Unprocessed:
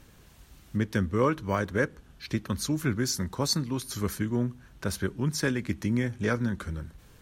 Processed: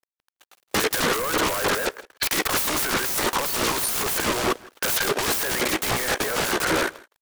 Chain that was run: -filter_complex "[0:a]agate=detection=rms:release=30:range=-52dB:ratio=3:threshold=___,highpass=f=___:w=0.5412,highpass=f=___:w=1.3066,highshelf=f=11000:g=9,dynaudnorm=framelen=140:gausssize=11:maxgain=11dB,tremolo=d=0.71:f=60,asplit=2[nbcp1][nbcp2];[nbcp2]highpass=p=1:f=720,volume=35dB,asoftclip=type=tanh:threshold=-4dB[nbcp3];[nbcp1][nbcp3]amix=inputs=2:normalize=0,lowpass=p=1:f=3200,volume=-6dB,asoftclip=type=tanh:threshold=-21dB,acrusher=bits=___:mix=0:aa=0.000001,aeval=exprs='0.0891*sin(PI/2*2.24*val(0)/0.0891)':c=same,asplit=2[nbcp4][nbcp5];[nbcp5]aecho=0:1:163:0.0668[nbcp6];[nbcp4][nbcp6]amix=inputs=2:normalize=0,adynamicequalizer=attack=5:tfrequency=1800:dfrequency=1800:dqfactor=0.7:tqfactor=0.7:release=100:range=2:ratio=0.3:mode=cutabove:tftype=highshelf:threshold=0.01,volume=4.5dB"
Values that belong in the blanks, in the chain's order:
-40dB, 430, 430, 11